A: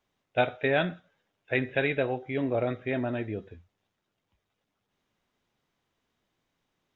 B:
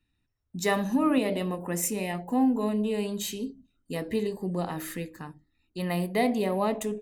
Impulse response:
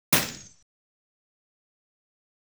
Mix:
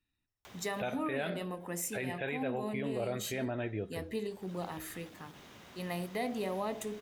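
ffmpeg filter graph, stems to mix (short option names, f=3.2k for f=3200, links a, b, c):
-filter_complex "[0:a]highpass=61,adynamicequalizer=threshold=0.00631:dfrequency=250:dqfactor=2.3:tfrequency=250:tqfactor=2.3:attack=5:release=100:ratio=0.375:range=2.5:mode=cutabove:tftype=bell,acompressor=mode=upward:threshold=-30dB:ratio=2.5,adelay=450,volume=-2dB[a];[1:a]lowshelf=f=350:g=-5,volume=-6dB[b];[a][b]amix=inputs=2:normalize=0,alimiter=level_in=1.5dB:limit=-24dB:level=0:latency=1:release=114,volume=-1.5dB"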